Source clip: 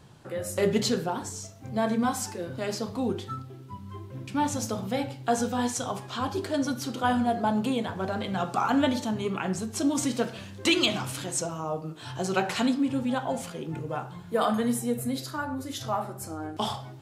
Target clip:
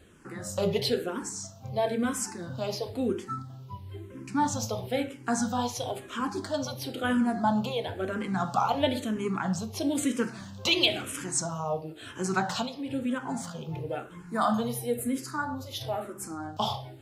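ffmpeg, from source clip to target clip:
ffmpeg -i in.wav -filter_complex "[0:a]asettb=1/sr,asplit=3[link_01][link_02][link_03];[link_01]atrim=end=12.474[link_04];[link_02]atrim=start=12.47:end=13.26,asetpts=PTS-STARTPTS,afade=type=in:duration=0.004:curve=qsin,afade=type=out:start_time=0.786:duration=0.004:curve=qsin,acompressor=threshold=-25dB:ratio=6[link_05];[link_03]atrim=start=13.256[link_06];[link_04][link_05]acrossfade=duration=0.004:curve1=hsin:curve2=qsin[link_07];[link_07][link_06]acrossfade=duration=0.004:curve1=qsin:curve2=hsin,asplit=2[link_08][link_09];[link_09]afreqshift=-1[link_10];[link_08][link_10]amix=inputs=2:normalize=1,volume=2dB" out.wav

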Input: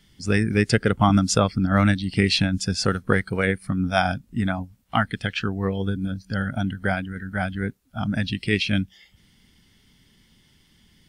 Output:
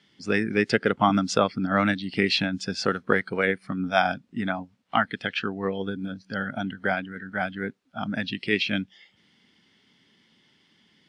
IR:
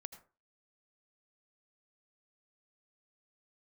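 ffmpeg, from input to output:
-af "highpass=240,lowpass=4300"

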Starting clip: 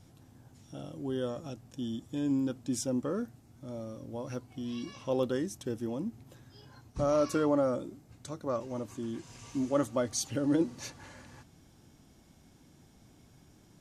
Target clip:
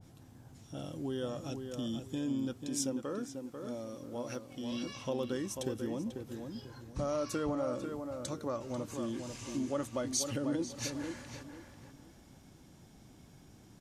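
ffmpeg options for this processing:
ffmpeg -i in.wav -filter_complex "[0:a]acompressor=threshold=-36dB:ratio=2.5,asettb=1/sr,asplit=3[link_01][link_02][link_03];[link_01]atrim=end=2.534[link_04];[link_02]atrim=start=2.53:end=4.72,asetpts=PTS-STARTPTS,afade=type=in:duration=0.004:curve=qsin,afade=type=out:start_time=2.186:duration=0.004:curve=qsin,equalizer=frequency=71:width_type=o:width=2.2:gain=-11.5[link_05];[link_03]atrim=start=4.716[link_06];[link_04][link_05]acrossfade=duration=0.004:curve1=hsin:curve2=qsin[link_07];[link_07][link_06]acrossfade=duration=0.004:curve1=qsin:curve2=hsin,asplit=2[link_08][link_09];[link_09]adelay=492,lowpass=frequency=2300:poles=1,volume=-6dB,asplit=2[link_10][link_11];[link_11]adelay=492,lowpass=frequency=2300:poles=1,volume=0.29,asplit=2[link_12][link_13];[link_13]adelay=492,lowpass=frequency=2300:poles=1,volume=0.29,asplit=2[link_14][link_15];[link_15]adelay=492,lowpass=frequency=2300:poles=1,volume=0.29[link_16];[link_08][link_10][link_12][link_14][link_16]amix=inputs=5:normalize=0,adynamicequalizer=threshold=0.002:dfrequency=1700:dqfactor=0.7:tfrequency=1700:tqfactor=0.7:attack=5:release=100:ratio=0.375:range=2:mode=boostabove:tftype=highshelf,volume=1dB" out.wav

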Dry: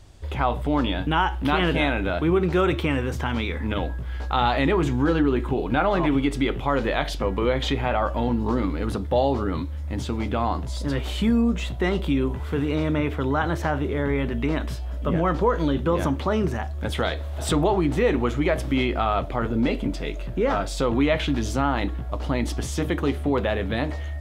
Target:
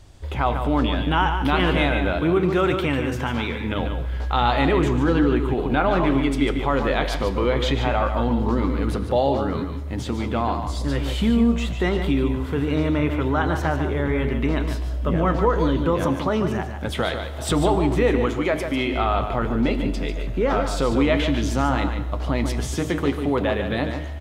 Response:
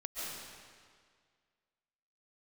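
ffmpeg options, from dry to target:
-filter_complex "[0:a]asettb=1/sr,asplit=3[link_01][link_02][link_03];[link_01]atrim=end=18.264[link_04];[link_02]atrim=start=18.26:end=18.94,asetpts=PTS-STARTPTS,afade=type=in:duration=0.004:curve=qsin,afade=type=out:start_time=0.676:duration=0.004:curve=qsin,lowshelf=frequency=150:gain=-10.5[link_05];[link_03]atrim=start=18.936[link_06];[link_04][link_05]acrossfade=duration=0.004:curve1=hsin:curve2=qsin[link_07];[link_07][link_06]acrossfade=duration=0.004:curve1=qsin:curve2=hsin,asplit=2[link_08][link_09];[link_09]adelay=145.8,volume=-7dB,highshelf=frequency=4000:gain=-3.28[link_10];[link_08][link_10]amix=inputs=2:normalize=0,asplit=2[link_11][link_12];[1:a]atrim=start_sample=2205,asetrate=70560,aresample=44100[link_13];[link_12][link_13]afir=irnorm=-1:irlink=0,volume=-10dB[link_14];[link_11][link_14]amix=inputs=2:normalize=0"

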